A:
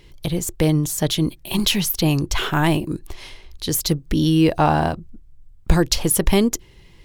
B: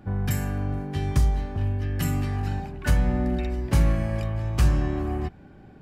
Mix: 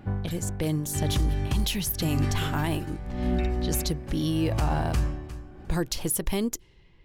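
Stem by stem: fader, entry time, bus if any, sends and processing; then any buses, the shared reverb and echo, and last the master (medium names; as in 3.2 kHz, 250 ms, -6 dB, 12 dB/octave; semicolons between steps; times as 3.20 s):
-9.0 dB, 0.00 s, no send, no echo send, level-controlled noise filter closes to 2.4 kHz, open at -16.5 dBFS; treble shelf 10 kHz +8 dB
+1.5 dB, 0.00 s, no send, echo send -3.5 dB, logarithmic tremolo 0.88 Hz, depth 23 dB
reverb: none
echo: feedback delay 354 ms, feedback 16%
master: peak limiter -16.5 dBFS, peak gain reduction 10 dB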